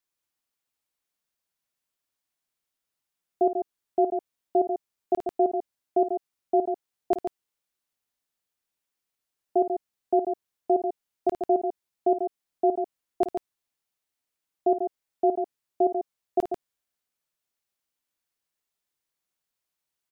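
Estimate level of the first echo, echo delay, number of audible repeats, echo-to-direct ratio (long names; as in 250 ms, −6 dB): −11.0 dB, 54 ms, 2, −5.5 dB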